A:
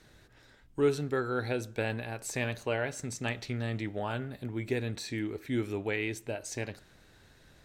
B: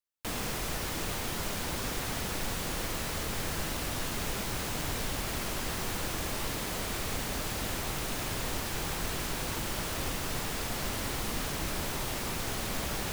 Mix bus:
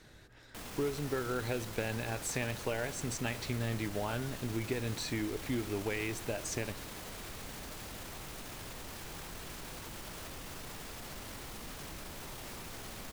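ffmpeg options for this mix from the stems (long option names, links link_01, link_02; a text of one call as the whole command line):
ffmpeg -i stem1.wav -i stem2.wav -filter_complex "[0:a]acompressor=threshold=-33dB:ratio=6,volume=1.5dB[link_01];[1:a]alimiter=level_in=8dB:limit=-24dB:level=0:latency=1:release=36,volume=-8dB,adelay=300,volume=-4dB[link_02];[link_01][link_02]amix=inputs=2:normalize=0" out.wav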